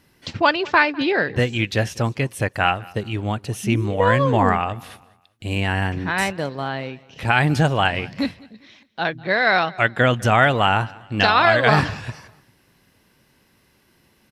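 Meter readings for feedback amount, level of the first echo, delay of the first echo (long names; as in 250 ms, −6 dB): 38%, −23.0 dB, 200 ms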